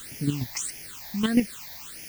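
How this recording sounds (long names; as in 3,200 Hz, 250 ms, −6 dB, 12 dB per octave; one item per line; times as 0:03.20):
chopped level 7.3 Hz, depth 60%, duty 20%
a quantiser's noise floor 8 bits, dither triangular
phaser sweep stages 8, 1.6 Hz, lowest notch 370–1,200 Hz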